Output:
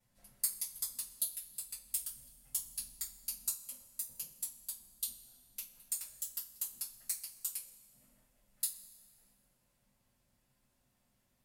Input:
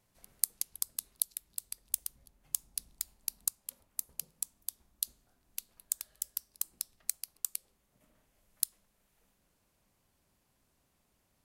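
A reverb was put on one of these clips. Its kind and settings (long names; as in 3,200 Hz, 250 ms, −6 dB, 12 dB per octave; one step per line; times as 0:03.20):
coupled-rooms reverb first 0.22 s, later 1.6 s, from −20 dB, DRR −9.5 dB
level −12.5 dB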